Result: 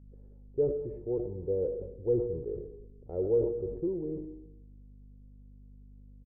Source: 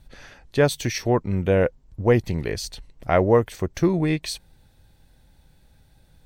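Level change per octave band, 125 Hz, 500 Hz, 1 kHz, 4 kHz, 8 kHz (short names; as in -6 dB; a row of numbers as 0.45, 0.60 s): -16.0 dB, -8.0 dB, under -25 dB, under -40 dB, under -40 dB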